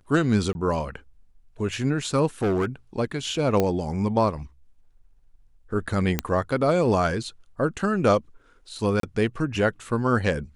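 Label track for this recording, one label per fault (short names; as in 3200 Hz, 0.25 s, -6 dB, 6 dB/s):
0.530000	0.550000	gap 21 ms
2.420000	2.650000	clipped -19.5 dBFS
3.600000	3.600000	pop -9 dBFS
6.190000	6.190000	pop -7 dBFS
9.000000	9.030000	gap 33 ms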